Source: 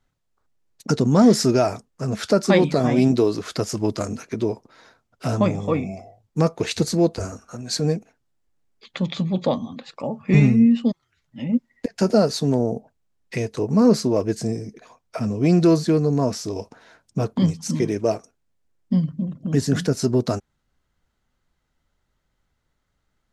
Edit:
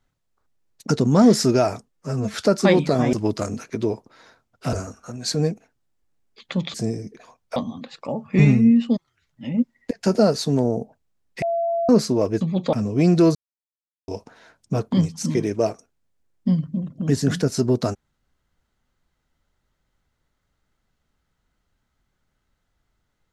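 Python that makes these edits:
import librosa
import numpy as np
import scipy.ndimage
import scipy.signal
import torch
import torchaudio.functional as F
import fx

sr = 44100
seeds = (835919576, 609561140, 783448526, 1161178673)

y = fx.edit(x, sr, fx.stretch_span(start_s=1.89, length_s=0.3, factor=1.5),
    fx.cut(start_s=2.98, length_s=0.74),
    fx.cut(start_s=5.32, length_s=1.86),
    fx.swap(start_s=9.19, length_s=0.32, other_s=14.36, other_length_s=0.82),
    fx.bleep(start_s=13.37, length_s=0.47, hz=676.0, db=-19.5),
    fx.silence(start_s=15.8, length_s=0.73), tone=tone)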